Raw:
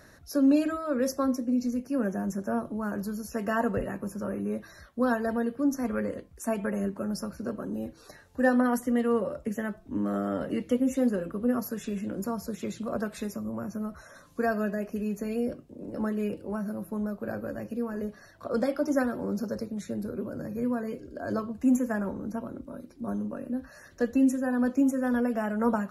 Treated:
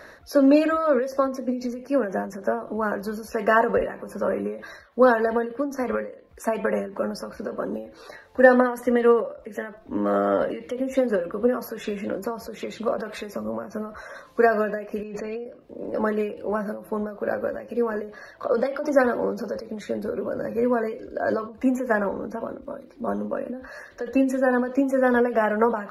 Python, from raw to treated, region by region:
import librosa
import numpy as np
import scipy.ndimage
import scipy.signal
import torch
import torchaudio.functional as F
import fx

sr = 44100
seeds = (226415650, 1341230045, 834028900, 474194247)

y = fx.chain(x, sr, fx.lowpass(hz=4900.0, slope=12),
    fx.over_compress(threshold_db=-39.0, ratio=-1.0), at=(15.03, 15.46))
y = fx.graphic_eq(y, sr, hz=(125, 500, 1000, 2000, 4000, 8000), db=(-5, 10, 7, 8, 6, -5))
y = fx.end_taper(y, sr, db_per_s=110.0)
y = y * librosa.db_to_amplitude(1.5)